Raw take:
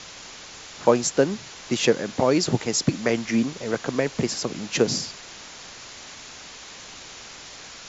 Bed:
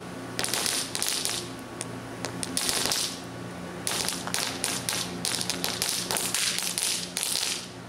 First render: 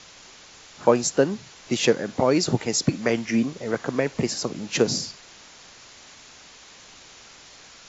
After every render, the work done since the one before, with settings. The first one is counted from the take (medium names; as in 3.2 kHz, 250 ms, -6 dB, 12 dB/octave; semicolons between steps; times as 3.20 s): noise print and reduce 6 dB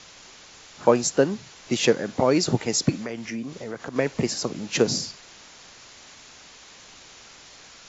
3.02–3.96 s: compression 3:1, threshold -31 dBFS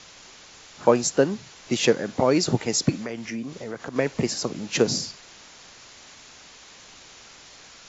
no audible change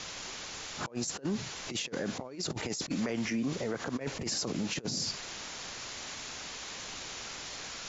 compressor with a negative ratio -29 dBFS, ratio -0.5; peak limiter -24.5 dBFS, peak gain reduction 11 dB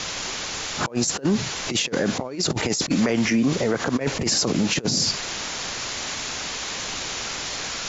trim +12 dB